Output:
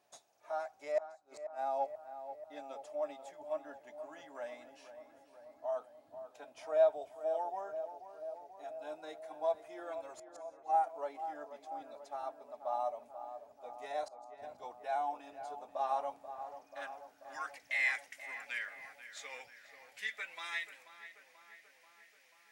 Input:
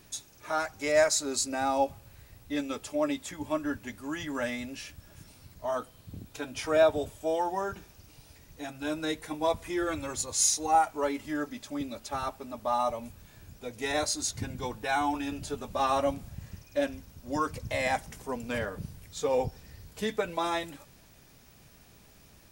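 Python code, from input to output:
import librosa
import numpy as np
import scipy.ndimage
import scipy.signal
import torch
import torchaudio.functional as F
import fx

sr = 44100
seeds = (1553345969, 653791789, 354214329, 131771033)

y = scipy.signal.lfilter([1.0, -0.9], [1.0], x)
y = fx.gate_flip(y, sr, shuts_db=-24.0, range_db=-30)
y = fx.cheby_harmonics(y, sr, harmonics=(6, 8), levels_db=(-27, -44), full_scale_db=-22.5)
y = fx.filter_sweep_bandpass(y, sr, from_hz=690.0, to_hz=2000.0, start_s=15.76, end_s=17.69, q=4.5)
y = fx.echo_filtered(y, sr, ms=486, feedback_pct=74, hz=1800.0, wet_db=-10.5)
y = F.gain(torch.from_numpy(y), 14.5).numpy()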